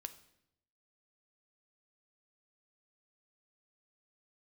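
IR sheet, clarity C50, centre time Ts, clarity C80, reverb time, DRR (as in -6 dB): 14.5 dB, 6 ms, 17.5 dB, 0.80 s, 9.5 dB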